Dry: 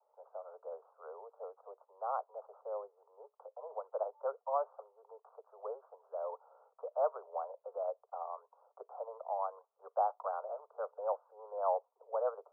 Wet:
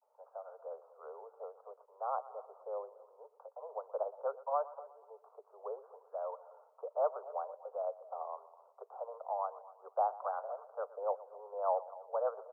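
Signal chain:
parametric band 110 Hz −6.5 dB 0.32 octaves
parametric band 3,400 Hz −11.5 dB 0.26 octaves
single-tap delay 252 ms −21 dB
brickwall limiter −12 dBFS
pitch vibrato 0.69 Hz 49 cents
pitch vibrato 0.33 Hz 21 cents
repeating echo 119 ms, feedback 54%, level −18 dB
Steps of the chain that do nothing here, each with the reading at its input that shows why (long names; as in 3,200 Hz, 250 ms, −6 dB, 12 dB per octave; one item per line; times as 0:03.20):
parametric band 110 Hz: nothing at its input below 380 Hz
parametric band 3,400 Hz: nothing at its input above 1,400 Hz
brickwall limiter −12 dBFS: peak of its input −20.5 dBFS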